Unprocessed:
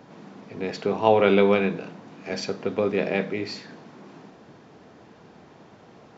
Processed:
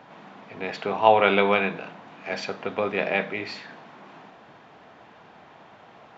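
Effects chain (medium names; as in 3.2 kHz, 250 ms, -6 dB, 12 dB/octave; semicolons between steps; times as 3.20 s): high-order bell 1.5 kHz +10 dB 2.9 oct; trim -5.5 dB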